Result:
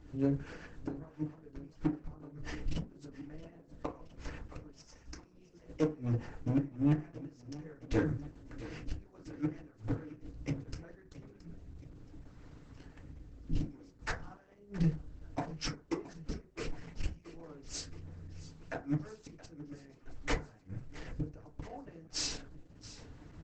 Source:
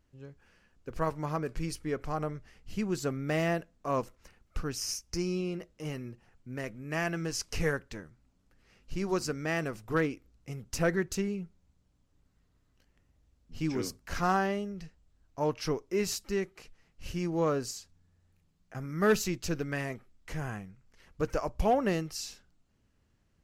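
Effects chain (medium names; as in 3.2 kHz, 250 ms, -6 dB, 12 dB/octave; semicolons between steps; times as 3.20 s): median filter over 5 samples; in parallel at 0 dB: compression 16:1, threshold -37 dBFS, peak gain reduction 17.5 dB; on the sum: inverted gate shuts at -25 dBFS, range -38 dB; saturation -38 dBFS, distortion -8 dB; rotary cabinet horn 7.5 Hz, later 0.65 Hz, at 9.95 s; peaking EQ 3.3 kHz -4 dB 2.3 oct; on a send: feedback delay 672 ms, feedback 60%, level -16.5 dB; on the sum: FDN reverb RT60 0.3 s, low-frequency decay 1×, high-frequency decay 0.45×, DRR -0.5 dB; trim +11 dB; Opus 10 kbps 48 kHz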